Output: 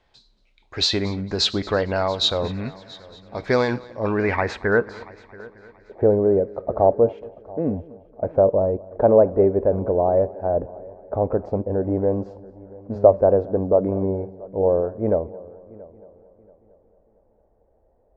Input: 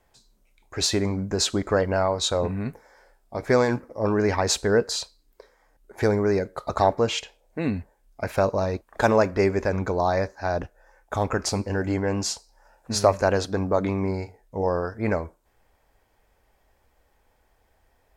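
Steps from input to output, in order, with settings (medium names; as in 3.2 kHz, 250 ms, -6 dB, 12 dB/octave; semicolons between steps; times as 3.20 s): low-pass sweep 3.9 kHz -> 570 Hz, 3.81–5.73 s; multi-head delay 227 ms, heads first and third, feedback 45%, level -22 dB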